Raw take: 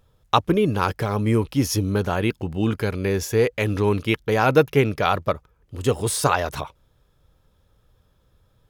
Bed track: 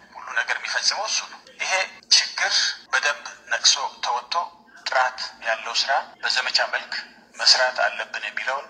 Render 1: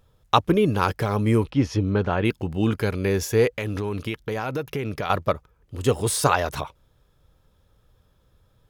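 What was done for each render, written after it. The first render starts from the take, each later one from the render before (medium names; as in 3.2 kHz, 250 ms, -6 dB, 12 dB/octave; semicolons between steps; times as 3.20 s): 1.50–2.25 s: low-pass 3.1 kHz; 3.51–5.10 s: compression 12:1, threshold -23 dBFS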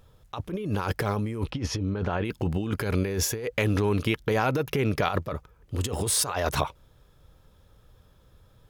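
compressor with a negative ratio -27 dBFS, ratio -1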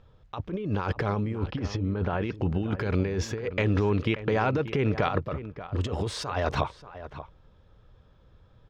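distance through air 170 m; echo from a far wall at 100 m, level -13 dB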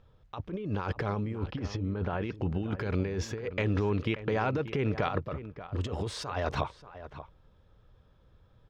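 trim -4 dB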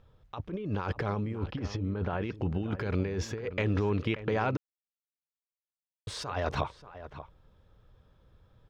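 4.57–6.07 s: mute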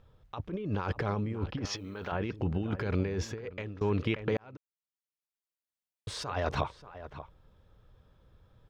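1.65–2.12 s: tilt EQ +4 dB/octave; 3.16–3.81 s: fade out, to -22.5 dB; 4.37–6.27 s: fade in equal-power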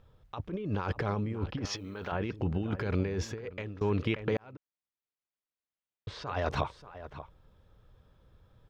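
4.53–6.27 s: distance through air 190 m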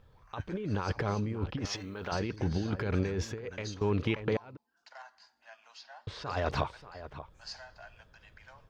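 add bed track -29.5 dB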